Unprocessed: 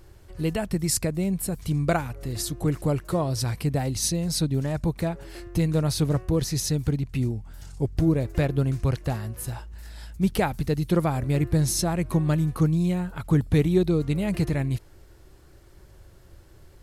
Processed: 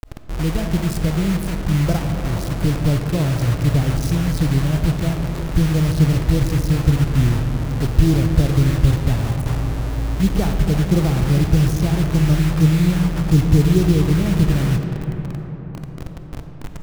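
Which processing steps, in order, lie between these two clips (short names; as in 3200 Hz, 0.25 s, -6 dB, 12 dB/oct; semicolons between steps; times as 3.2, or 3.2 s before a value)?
tilt -4.5 dB/oct; bit-crush 4-bit; reverb RT60 5.0 s, pre-delay 5 ms, DRR 5 dB; gain -5.5 dB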